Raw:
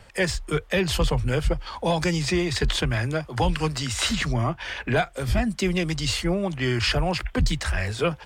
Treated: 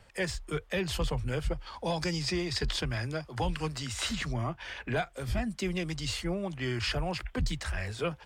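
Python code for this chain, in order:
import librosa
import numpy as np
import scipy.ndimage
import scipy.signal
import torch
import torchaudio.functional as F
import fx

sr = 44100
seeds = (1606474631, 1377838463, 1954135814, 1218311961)

y = fx.peak_eq(x, sr, hz=5000.0, db=7.5, octaves=0.32, at=(1.74, 3.33))
y = y * 10.0 ** (-8.5 / 20.0)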